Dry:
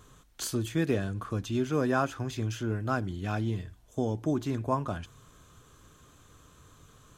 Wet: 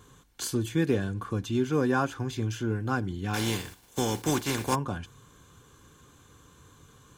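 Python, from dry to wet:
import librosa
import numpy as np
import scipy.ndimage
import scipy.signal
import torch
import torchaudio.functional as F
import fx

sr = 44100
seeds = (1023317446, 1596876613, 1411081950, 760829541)

y = fx.spec_flatten(x, sr, power=0.48, at=(3.33, 4.74), fade=0.02)
y = fx.notch_comb(y, sr, f0_hz=640.0)
y = F.gain(torch.from_numpy(y), 2.5).numpy()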